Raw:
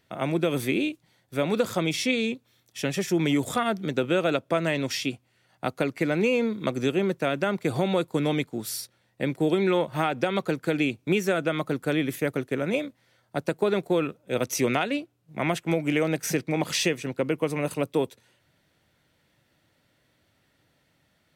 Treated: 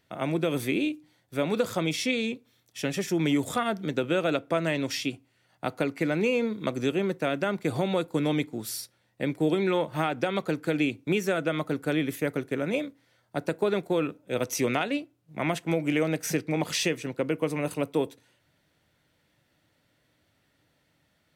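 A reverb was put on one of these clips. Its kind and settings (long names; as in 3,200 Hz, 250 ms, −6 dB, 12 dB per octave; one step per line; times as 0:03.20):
feedback delay network reverb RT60 0.33 s, low-frequency decay 1.05×, high-frequency decay 0.65×, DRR 18 dB
level −2 dB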